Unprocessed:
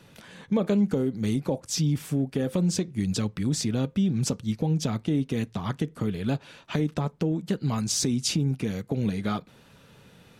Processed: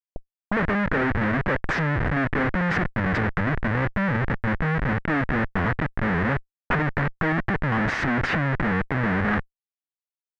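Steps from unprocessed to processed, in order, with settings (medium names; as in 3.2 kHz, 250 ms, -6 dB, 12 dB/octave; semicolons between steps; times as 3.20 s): 3.39–4.99 s: median filter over 25 samples; Schmitt trigger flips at -34 dBFS; touch-sensitive low-pass 450–1800 Hz up, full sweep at -30 dBFS; trim +4 dB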